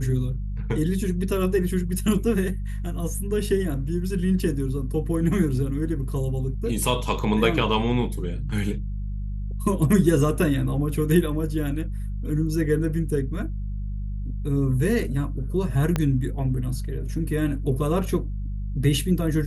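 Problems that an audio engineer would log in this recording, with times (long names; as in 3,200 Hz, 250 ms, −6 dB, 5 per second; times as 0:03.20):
mains hum 50 Hz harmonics 4 −29 dBFS
0:15.96: click −10 dBFS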